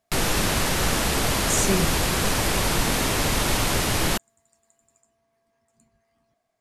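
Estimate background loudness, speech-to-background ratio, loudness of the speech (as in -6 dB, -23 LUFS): -22.5 LUFS, -4.0 dB, -26.5 LUFS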